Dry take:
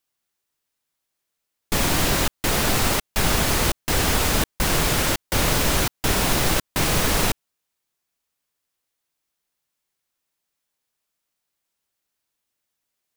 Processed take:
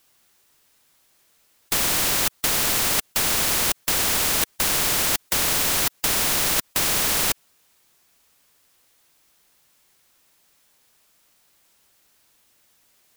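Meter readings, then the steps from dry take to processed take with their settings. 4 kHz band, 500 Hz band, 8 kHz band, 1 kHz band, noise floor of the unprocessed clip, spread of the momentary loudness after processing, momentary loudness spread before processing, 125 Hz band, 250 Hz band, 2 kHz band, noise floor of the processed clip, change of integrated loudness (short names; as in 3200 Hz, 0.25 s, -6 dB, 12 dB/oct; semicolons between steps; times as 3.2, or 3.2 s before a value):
+0.5 dB, -6.0 dB, +3.0 dB, -3.5 dB, -81 dBFS, 2 LU, 2 LU, -11.0 dB, -8.0 dB, -1.5 dB, -63 dBFS, +1.5 dB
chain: spectral compressor 4:1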